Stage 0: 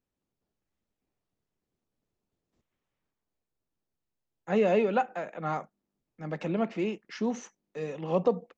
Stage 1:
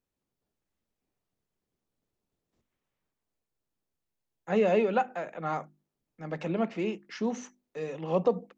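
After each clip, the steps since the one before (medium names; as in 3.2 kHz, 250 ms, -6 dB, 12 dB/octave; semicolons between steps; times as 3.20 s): hum notches 50/100/150/200/250/300/350 Hz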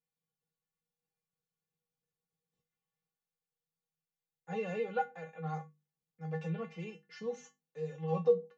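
feedback comb 160 Hz, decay 0.18 s, harmonics odd, mix 100%; trim +3.5 dB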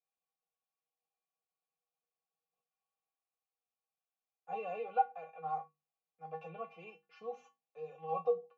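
vowel filter a; trim +9.5 dB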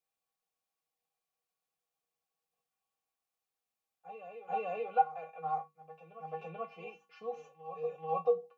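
reverse echo 436 ms -11 dB; trim +3 dB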